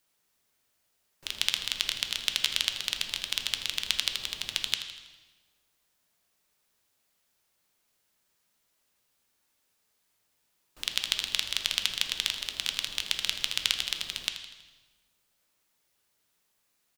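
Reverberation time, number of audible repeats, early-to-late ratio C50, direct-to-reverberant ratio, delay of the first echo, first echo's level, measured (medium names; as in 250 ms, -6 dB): 1.3 s, 2, 7.0 dB, 5.0 dB, 81 ms, -12.5 dB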